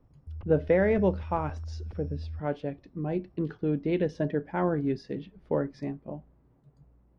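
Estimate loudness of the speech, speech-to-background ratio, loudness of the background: -30.0 LUFS, 10.5 dB, -40.5 LUFS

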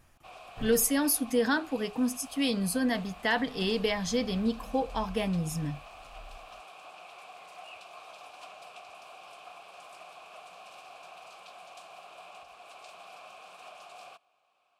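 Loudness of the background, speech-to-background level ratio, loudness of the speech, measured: -48.5 LUFS, 19.5 dB, -29.0 LUFS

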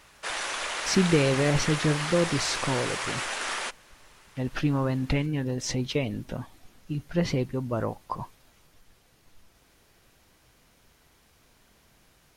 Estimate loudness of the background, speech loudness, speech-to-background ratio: -30.5 LUFS, -28.0 LUFS, 2.5 dB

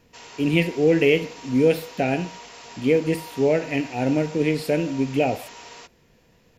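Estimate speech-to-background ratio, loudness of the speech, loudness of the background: 18.5 dB, -22.5 LUFS, -41.0 LUFS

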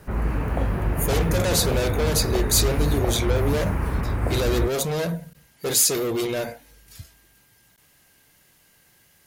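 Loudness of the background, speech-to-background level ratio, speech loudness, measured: -26.0 LUFS, 2.0 dB, -24.0 LUFS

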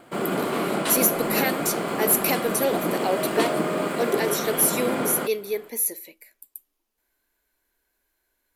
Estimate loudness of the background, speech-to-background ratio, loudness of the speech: -26.5 LUFS, 2.0 dB, -24.5 LUFS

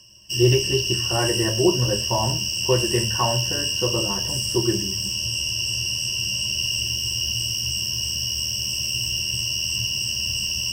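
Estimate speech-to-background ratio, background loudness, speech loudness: -2.0 dB, -22.5 LUFS, -24.5 LUFS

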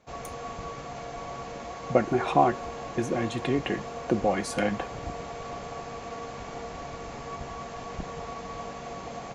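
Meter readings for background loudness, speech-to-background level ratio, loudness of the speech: -38.0 LUFS, 10.0 dB, -28.0 LUFS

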